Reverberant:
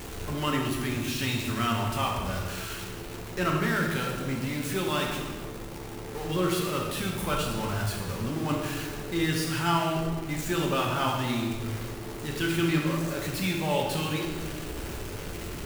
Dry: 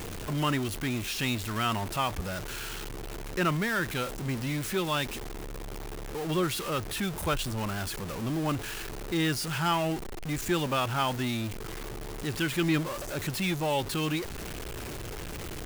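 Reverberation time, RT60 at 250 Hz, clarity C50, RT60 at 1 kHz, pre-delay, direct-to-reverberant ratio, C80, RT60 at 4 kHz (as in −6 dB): 1.6 s, 1.9 s, 2.0 dB, 1.4 s, 5 ms, −1.5 dB, 4.5 dB, 1.2 s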